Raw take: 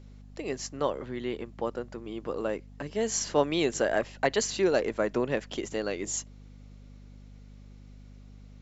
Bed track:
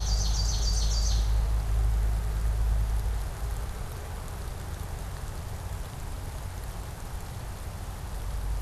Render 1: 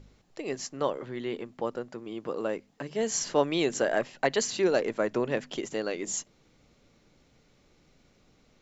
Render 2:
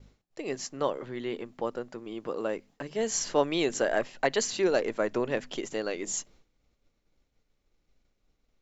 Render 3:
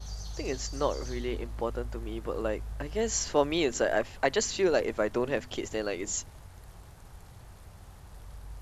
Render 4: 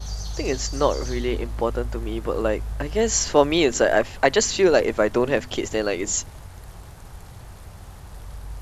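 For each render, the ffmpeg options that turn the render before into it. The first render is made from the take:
-af "bandreject=f=50:t=h:w=4,bandreject=f=100:t=h:w=4,bandreject=f=150:t=h:w=4,bandreject=f=200:t=h:w=4,bandreject=f=250:t=h:w=4"
-af "agate=range=-33dB:threshold=-52dB:ratio=3:detection=peak,asubboost=boost=4.5:cutoff=58"
-filter_complex "[1:a]volume=-12.5dB[a];[0:a][a]amix=inputs=2:normalize=0"
-af "volume=8.5dB"

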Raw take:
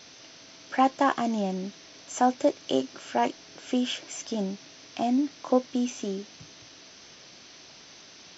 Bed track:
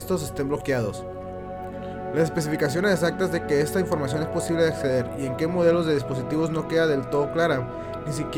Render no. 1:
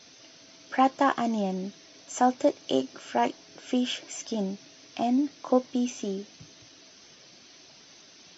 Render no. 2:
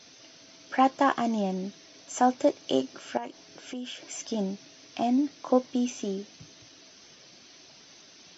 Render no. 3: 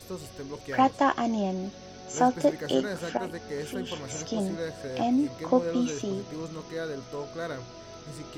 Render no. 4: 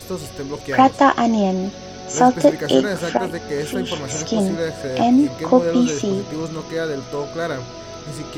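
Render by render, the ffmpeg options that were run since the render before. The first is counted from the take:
-af "afftdn=nr=6:nf=-50"
-filter_complex "[0:a]asettb=1/sr,asplit=3[a][b][c];[a]atrim=end=3.174[d];[b]atrim=start=3.17:end=4.04,asetpts=PTS-STARTPTS,afade=t=in:d=0.004:c=qsin,afade=t=out:st=0.866:d=0.004:c=qsin,acompressor=threshold=-39dB:ratio=2.5:attack=3.2:release=140:knee=1:detection=peak[e];[c]atrim=start=4.036[f];[d][e]acrossfade=d=0.004:c1=hsin:c2=qsin[g];[g][f]acrossfade=d=0.004:c1=qsin:c2=hsin"
-filter_complex "[1:a]volume=-13dB[a];[0:a][a]amix=inputs=2:normalize=0"
-af "volume=10.5dB,alimiter=limit=-1dB:level=0:latency=1"

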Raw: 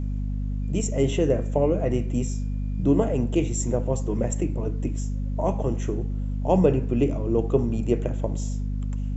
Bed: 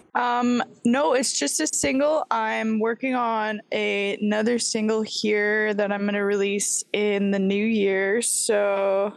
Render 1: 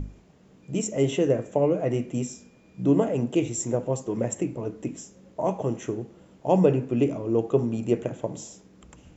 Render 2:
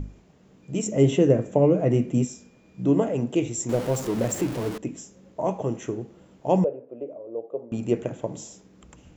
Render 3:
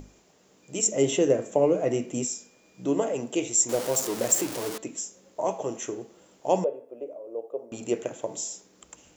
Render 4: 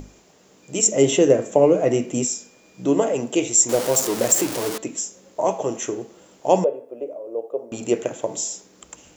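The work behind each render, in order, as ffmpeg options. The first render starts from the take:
-af "bandreject=f=50:t=h:w=6,bandreject=f=100:t=h:w=6,bandreject=f=150:t=h:w=6,bandreject=f=200:t=h:w=6,bandreject=f=250:t=h:w=6"
-filter_complex "[0:a]asettb=1/sr,asplit=3[a][b][c];[a]atrim=end=0.864[d];[b]atrim=start=0.86:end=2.25,asetpts=PTS-STARTPTS,afade=t=in:d=0.004:c=qsin,afade=t=out:st=1.386:d=0.004:c=qsin,equalizer=f=160:t=o:w=2.7:g=7[e];[c]atrim=start=2.246[f];[d][e]acrossfade=d=0.004:c1=hsin:c2=qsin[g];[g][f]acrossfade=d=0.004:c1=qsin:c2=hsin,asettb=1/sr,asplit=3[h][i][j];[h]atrim=end=3.694[k];[i]atrim=start=3.69:end=4.78,asetpts=PTS-STARTPTS,afade=t=in:d=0.004:c=qsin,afade=t=out:st=1.086:d=0.004:c=qsin,aeval=exprs='val(0)+0.5*0.0335*sgn(val(0))':c=same[l];[j]atrim=start=4.776[m];[k][l]acrossfade=d=0.004:c1=hsin:c2=qsin[n];[n][m]acrossfade=d=0.004:c1=qsin:c2=hsin,asettb=1/sr,asplit=3[o][p][q];[o]atrim=end=6.644[r];[p]atrim=start=6.64:end=7.72,asetpts=PTS-STARTPTS,afade=t=in:d=0.004:c=qsin,afade=t=out:st=1.076:d=0.004:c=qsin,bandpass=f=560:t=q:w=5.1[s];[q]atrim=start=7.716[t];[r][s]acrossfade=d=0.004:c1=hsin:c2=qsin[u];[u][t]acrossfade=d=0.004:c1=qsin:c2=hsin"
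-af "bass=f=250:g=-15,treble=f=4k:g=10,bandreject=f=222.3:t=h:w=4,bandreject=f=444.6:t=h:w=4,bandreject=f=666.9:t=h:w=4,bandreject=f=889.2:t=h:w=4,bandreject=f=1.1115k:t=h:w=4,bandreject=f=1.3338k:t=h:w=4,bandreject=f=1.5561k:t=h:w=4,bandreject=f=1.7784k:t=h:w=4,bandreject=f=2.0007k:t=h:w=4,bandreject=f=2.223k:t=h:w=4,bandreject=f=2.4453k:t=h:w=4,bandreject=f=2.6676k:t=h:w=4,bandreject=f=2.8899k:t=h:w=4,bandreject=f=3.1122k:t=h:w=4,bandreject=f=3.3345k:t=h:w=4,bandreject=f=3.5568k:t=h:w=4,bandreject=f=3.7791k:t=h:w=4,bandreject=f=4.0014k:t=h:w=4,bandreject=f=4.2237k:t=h:w=4,bandreject=f=4.446k:t=h:w=4"
-af "volume=6.5dB,alimiter=limit=-3dB:level=0:latency=1"

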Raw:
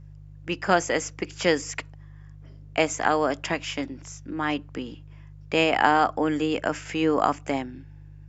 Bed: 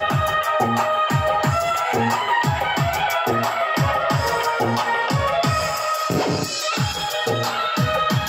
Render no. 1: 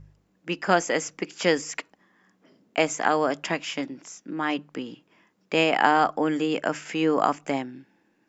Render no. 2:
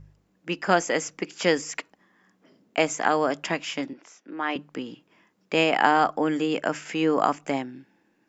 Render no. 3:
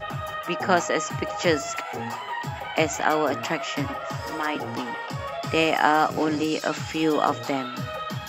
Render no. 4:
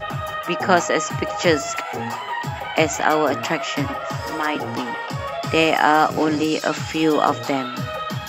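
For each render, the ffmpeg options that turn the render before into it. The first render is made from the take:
-af "bandreject=f=50:t=h:w=4,bandreject=f=100:t=h:w=4,bandreject=f=150:t=h:w=4"
-filter_complex "[0:a]asettb=1/sr,asplit=3[a][b][c];[a]atrim=end=3.934[d];[b]atrim=start=3.93:end=4.56,asetpts=PTS-STARTPTS,afade=t=in:d=0.004:c=qsin,afade=t=out:st=0.626:d=0.004:c=qsin,acrossover=split=300 4200:gain=0.141 1 0.224[e][f][g];[e][f][g]amix=inputs=3:normalize=0[h];[c]atrim=start=4.556[i];[d][h]acrossfade=d=0.004:c1=hsin:c2=qsin[j];[j][i]acrossfade=d=0.004:c1=qsin:c2=hsin"
-filter_complex "[1:a]volume=-12dB[a];[0:a][a]amix=inputs=2:normalize=0"
-af "volume=4.5dB,alimiter=limit=-1dB:level=0:latency=1"

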